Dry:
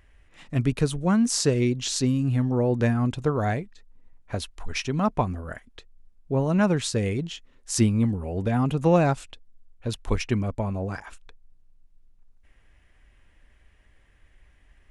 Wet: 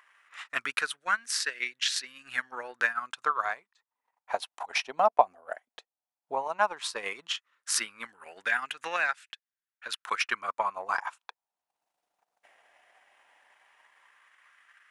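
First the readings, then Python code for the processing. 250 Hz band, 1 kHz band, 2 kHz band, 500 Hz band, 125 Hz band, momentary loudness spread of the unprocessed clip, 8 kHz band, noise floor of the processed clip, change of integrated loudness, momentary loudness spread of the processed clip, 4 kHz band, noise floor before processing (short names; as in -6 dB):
-29.5 dB, +2.5 dB, +6.5 dB, -8.5 dB, under -40 dB, 13 LU, -3.5 dB, under -85 dBFS, -5.5 dB, 13 LU, +0.5 dB, -59 dBFS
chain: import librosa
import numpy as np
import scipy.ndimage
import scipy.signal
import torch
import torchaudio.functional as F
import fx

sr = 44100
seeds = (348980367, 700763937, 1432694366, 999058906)

y = fx.dynamic_eq(x, sr, hz=7000.0, q=2.0, threshold_db=-48.0, ratio=4.0, max_db=-8)
y = fx.filter_lfo_highpass(y, sr, shape='sine', hz=0.14, low_hz=710.0, high_hz=1700.0, q=3.3)
y = fx.transient(y, sr, attack_db=5, sustain_db=-9)
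y = fx.rider(y, sr, range_db=4, speed_s=0.5)
y = y * librosa.db_to_amplitude(-2.0)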